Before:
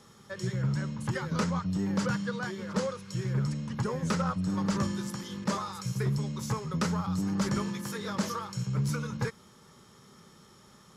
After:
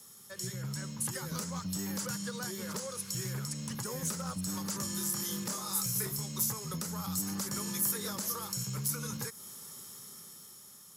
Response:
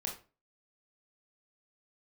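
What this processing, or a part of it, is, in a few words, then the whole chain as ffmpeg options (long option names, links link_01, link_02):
FM broadcast chain: -filter_complex "[0:a]asettb=1/sr,asplit=3[link_01][link_02][link_03];[link_01]atrim=end=4.944[link_04];[link_02]atrim=start=4.94:end=6.26,asetpts=PTS-STARTPTS,afade=type=in:duration=0.004:curve=qsin,afade=type=out:start_time=1.316:duration=0.004:curve=qsin,asplit=2[link_05][link_06];[link_06]adelay=26,volume=-3dB[link_07];[link_05][link_07]amix=inputs=2:normalize=0,atrim=end_sample=58212[link_08];[link_03]atrim=start=6.256[link_09];[link_04][link_08]acrossfade=duration=0.004:curve1=hsin:curve2=qsin[link_10];[link_10][link_09]acrossfade=duration=0.004:curve1=qsin:curve2=hsin,highpass=79,dynaudnorm=framelen=230:gausssize=9:maxgain=7dB,acrossover=split=710|2100|4800[link_11][link_12][link_13][link_14];[link_11]acompressor=threshold=-26dB:ratio=4[link_15];[link_12]acompressor=threshold=-35dB:ratio=4[link_16];[link_13]acompressor=threshold=-48dB:ratio=4[link_17];[link_14]acompressor=threshold=-41dB:ratio=4[link_18];[link_15][link_16][link_17][link_18]amix=inputs=4:normalize=0,aemphasis=mode=production:type=50fm,alimiter=limit=-19.5dB:level=0:latency=1:release=243,asoftclip=type=hard:threshold=-23dB,lowpass=frequency=15000:width=0.5412,lowpass=frequency=15000:width=1.3066,aemphasis=mode=production:type=50fm,volume=-8dB"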